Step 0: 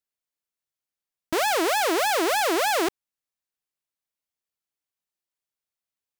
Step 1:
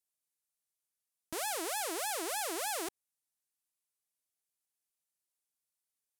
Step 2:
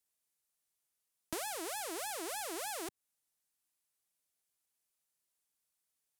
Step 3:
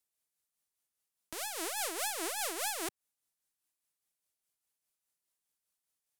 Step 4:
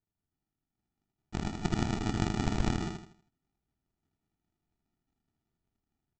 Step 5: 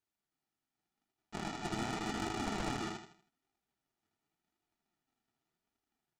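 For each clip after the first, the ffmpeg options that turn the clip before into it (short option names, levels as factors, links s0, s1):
-af "equalizer=f=10000:t=o:w=1.5:g=13,alimiter=limit=0.141:level=0:latency=1:release=92,equalizer=f=810:t=o:w=0.42:g=2,volume=0.447"
-filter_complex "[0:a]acrossover=split=200[s0][s1];[s1]acompressor=threshold=0.0112:ratio=4[s2];[s0][s2]amix=inputs=2:normalize=0,volume=1.5"
-af "alimiter=level_in=1.12:limit=0.0631:level=0:latency=1:release=408,volume=0.891,aeval=exprs='0.0562*(cos(1*acos(clip(val(0)/0.0562,-1,1)))-cos(1*PI/2))+0.00447*(cos(7*acos(clip(val(0)/0.0562,-1,1)))-cos(7*PI/2))':c=same,tremolo=f=4.9:d=0.45,volume=2.37"
-af "dynaudnorm=f=500:g=3:m=2.11,aresample=16000,acrusher=samples=30:mix=1:aa=0.000001,aresample=44100,aecho=1:1:80|160|240|320|400:0.596|0.214|0.0772|0.0278|0.01"
-filter_complex "[0:a]flanger=delay=2.3:depth=7.2:regen=-35:speed=0.86:shape=triangular,asplit=2[s0][s1];[s1]aeval=exprs='sgn(val(0))*max(abs(val(0))-0.00501,0)':c=same,volume=0.282[s2];[s0][s2]amix=inputs=2:normalize=0,asplit=2[s3][s4];[s4]highpass=f=720:p=1,volume=12.6,asoftclip=type=tanh:threshold=0.158[s5];[s3][s5]amix=inputs=2:normalize=0,lowpass=f=6600:p=1,volume=0.501,volume=0.376"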